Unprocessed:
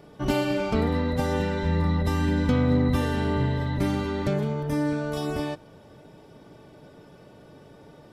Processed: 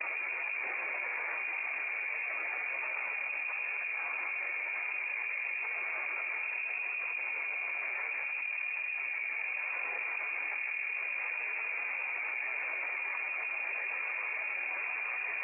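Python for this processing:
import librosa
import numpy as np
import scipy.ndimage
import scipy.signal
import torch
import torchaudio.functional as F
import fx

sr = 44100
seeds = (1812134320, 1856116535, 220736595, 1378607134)

y = fx.peak_eq(x, sr, hz=510.0, db=-9.0, octaves=1.9)
y = fx.tube_stage(y, sr, drive_db=34.0, bias=0.7)
y = fx.noise_vocoder(y, sr, seeds[0], bands=6)
y = fx.stretch_vocoder_free(y, sr, factor=1.9)
y = fx.echo_filtered(y, sr, ms=156, feedback_pct=61, hz=840.0, wet_db=-3)
y = fx.freq_invert(y, sr, carrier_hz=2600)
y = scipy.signal.sosfilt(scipy.signal.butter(4, 380.0, 'highpass', fs=sr, output='sos'), y)
y = fx.peak_eq(y, sr, hz=1600.0, db=-3.5, octaves=0.35)
y = fx.env_flatten(y, sr, amount_pct=100)
y = F.gain(torch.from_numpy(y), -2.0).numpy()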